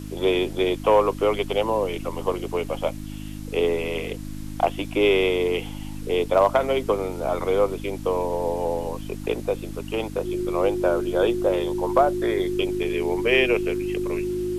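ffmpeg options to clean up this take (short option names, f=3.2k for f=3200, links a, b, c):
-af "adeclick=t=4,bandreject=f=51.3:t=h:w=4,bandreject=f=102.6:t=h:w=4,bandreject=f=153.9:t=h:w=4,bandreject=f=205.2:t=h:w=4,bandreject=f=256.5:t=h:w=4,bandreject=f=307.8:t=h:w=4,bandreject=f=360:w=30,afwtdn=0.004"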